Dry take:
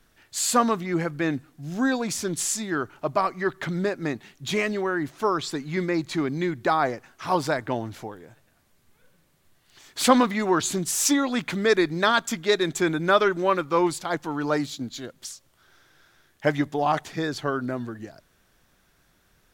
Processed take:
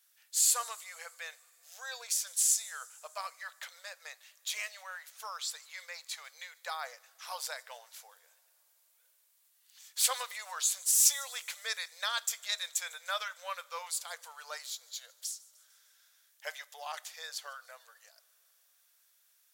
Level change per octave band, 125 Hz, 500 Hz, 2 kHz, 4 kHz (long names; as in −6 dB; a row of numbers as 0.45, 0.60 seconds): below −40 dB, −25.0 dB, −12.0 dB, −5.0 dB